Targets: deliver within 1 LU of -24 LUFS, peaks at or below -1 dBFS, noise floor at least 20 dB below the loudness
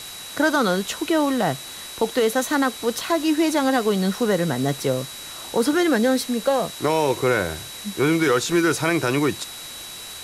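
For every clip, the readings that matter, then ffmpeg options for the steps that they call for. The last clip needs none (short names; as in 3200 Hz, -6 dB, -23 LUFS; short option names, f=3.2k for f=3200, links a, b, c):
steady tone 3900 Hz; tone level -38 dBFS; noise floor -37 dBFS; noise floor target -42 dBFS; loudness -21.5 LUFS; peak -9.0 dBFS; loudness target -24.0 LUFS
-> -af "bandreject=f=3.9k:w=30"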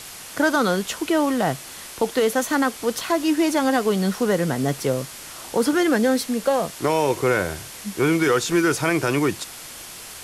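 steady tone none; noise floor -39 dBFS; noise floor target -42 dBFS
-> -af "afftdn=nr=6:nf=-39"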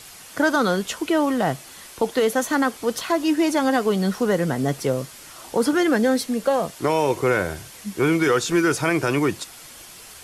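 noise floor -43 dBFS; loudness -21.5 LUFS; peak -9.0 dBFS; loudness target -24.0 LUFS
-> -af "volume=-2.5dB"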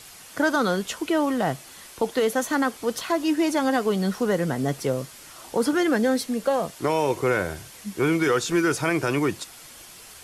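loudness -24.0 LUFS; peak -11.5 dBFS; noise floor -45 dBFS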